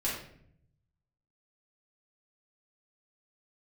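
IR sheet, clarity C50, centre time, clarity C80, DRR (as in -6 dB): 2.5 dB, 45 ms, 6.5 dB, -7.5 dB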